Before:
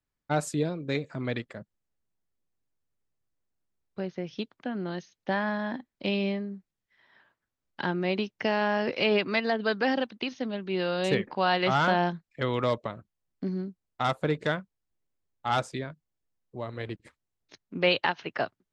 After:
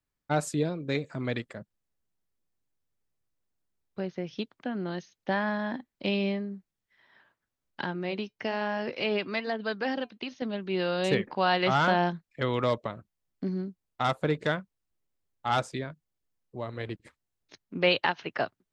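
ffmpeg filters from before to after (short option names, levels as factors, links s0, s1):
-filter_complex "[0:a]asettb=1/sr,asplit=3[s0][s1][s2];[s0]atrim=end=0.984[s3];[s1]atrim=start=0.98:end=1.54,asetpts=PTS-STARTPTS,afade=t=in:d=0.004:c=qsin,afade=t=out:st=0.556:d=0.004:c=qsin,equalizer=f=8800:w=1.5:g=6[s4];[s2]atrim=start=1.536[s5];[s3][s4]acrossfade=d=0.004:c1=hsin:c2=qsin[s6];[s6][s5]acrossfade=d=0.004:c1=qsin:c2=hsin,asettb=1/sr,asplit=3[s7][s8][s9];[s7]atrim=end=7.844[s10];[s8]atrim=start=7.84:end=10.42,asetpts=PTS-STARTPTS,afade=t=in:d=0.004:c=qsin,afade=t=out:st=2.576:d=0.004:c=qsin,flanger=delay=1.2:depth=2.3:regen=-84:speed=1.1:shape=sinusoidal[s11];[s9]atrim=start=10.416[s12];[s10][s11]acrossfade=d=0.004:c1=hsin:c2=qsin[s13];[s13][s12]acrossfade=d=0.004:c1=qsin:c2=hsin"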